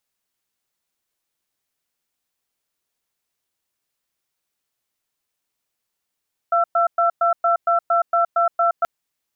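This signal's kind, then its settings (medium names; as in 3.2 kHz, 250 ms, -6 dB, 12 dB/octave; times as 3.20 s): cadence 686 Hz, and 1.34 kHz, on 0.12 s, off 0.11 s, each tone -17 dBFS 2.33 s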